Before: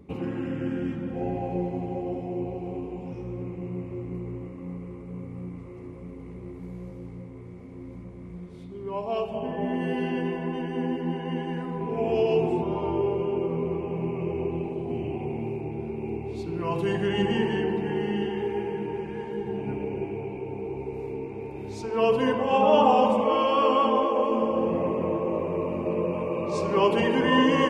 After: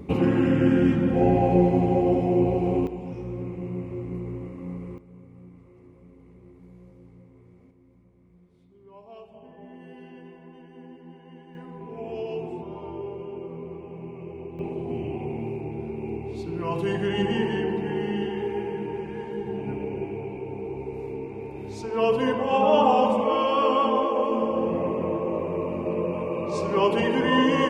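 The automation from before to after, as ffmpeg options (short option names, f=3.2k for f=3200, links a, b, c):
-af "asetnsamples=n=441:p=0,asendcmd='2.87 volume volume 1.5dB;4.98 volume volume -10.5dB;7.71 volume volume -17dB;11.55 volume volume -9dB;14.59 volume volume 0dB',volume=10dB"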